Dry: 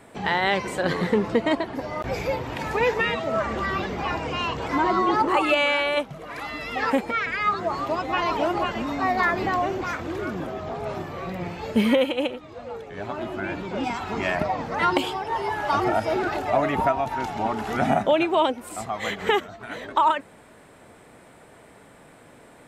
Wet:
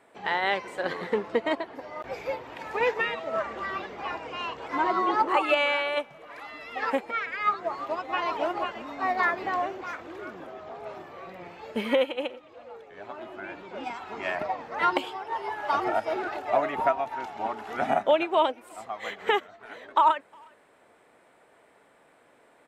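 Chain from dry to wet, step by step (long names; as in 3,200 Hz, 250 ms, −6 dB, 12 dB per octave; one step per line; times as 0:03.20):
bass and treble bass −14 dB, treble −6 dB
far-end echo of a speakerphone 360 ms, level −23 dB
expander for the loud parts 1.5 to 1, over −32 dBFS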